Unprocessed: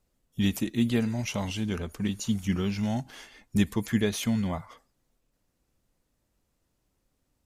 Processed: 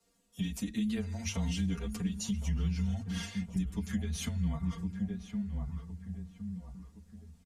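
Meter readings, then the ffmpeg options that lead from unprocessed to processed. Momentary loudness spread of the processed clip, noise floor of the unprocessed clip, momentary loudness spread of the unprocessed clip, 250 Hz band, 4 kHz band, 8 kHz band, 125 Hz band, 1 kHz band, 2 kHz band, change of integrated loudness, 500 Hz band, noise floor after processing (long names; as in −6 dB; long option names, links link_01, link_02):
11 LU, −77 dBFS, 7 LU, −6.0 dB, −6.5 dB, −3.5 dB, −2.5 dB, −10.5 dB, −8.5 dB, −6.5 dB, −13.0 dB, −64 dBFS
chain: -filter_complex "[0:a]highpass=100,acrossover=split=140[link_01][link_02];[link_02]acompressor=threshold=-39dB:ratio=6[link_03];[link_01][link_03]amix=inputs=2:normalize=0,lowpass=8900,highshelf=frequency=6200:gain=9.5,bandreject=frequency=60:width_type=h:width=6,bandreject=frequency=120:width_type=h:width=6,bandreject=frequency=180:width_type=h:width=6,bandreject=frequency=240:width_type=h:width=6,asubboost=boost=4:cutoff=220,afreqshift=-22,asplit=2[link_04][link_05];[link_05]adelay=1063,lowpass=frequency=1500:poles=1,volume=-9.5dB,asplit=2[link_06][link_07];[link_07]adelay=1063,lowpass=frequency=1500:poles=1,volume=0.44,asplit=2[link_08][link_09];[link_09]adelay=1063,lowpass=frequency=1500:poles=1,volume=0.44,asplit=2[link_10][link_11];[link_11]adelay=1063,lowpass=frequency=1500:poles=1,volume=0.44,asplit=2[link_12][link_13];[link_13]adelay=1063,lowpass=frequency=1500:poles=1,volume=0.44[link_14];[link_06][link_08][link_10][link_12][link_14]amix=inputs=5:normalize=0[link_15];[link_04][link_15]amix=inputs=2:normalize=0,acompressor=threshold=-33dB:ratio=3,aecho=1:1:4.3:0.76,asplit=2[link_16][link_17];[link_17]adelay=8.2,afreqshift=0.64[link_18];[link_16][link_18]amix=inputs=2:normalize=1,volume=5dB"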